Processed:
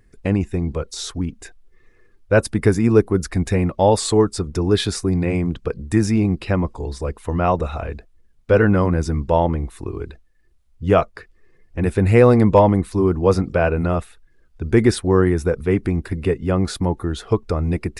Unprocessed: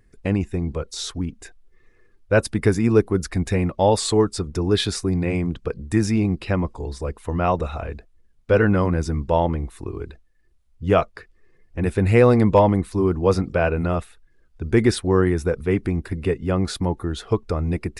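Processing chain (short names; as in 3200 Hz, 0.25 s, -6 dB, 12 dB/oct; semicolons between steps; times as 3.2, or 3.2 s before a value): dynamic EQ 3400 Hz, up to -3 dB, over -37 dBFS, Q 0.8; gain +2.5 dB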